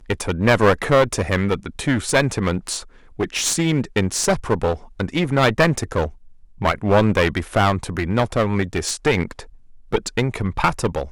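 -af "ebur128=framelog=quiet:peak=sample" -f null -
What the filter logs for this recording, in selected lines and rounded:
Integrated loudness:
  I:         -20.3 LUFS
  Threshold: -30.5 LUFS
Loudness range:
  LRA:         2.2 LU
  Threshold: -40.6 LUFS
  LRA low:   -22.0 LUFS
  LRA high:  -19.7 LUFS
Sample peak:
  Peak:       -2.0 dBFS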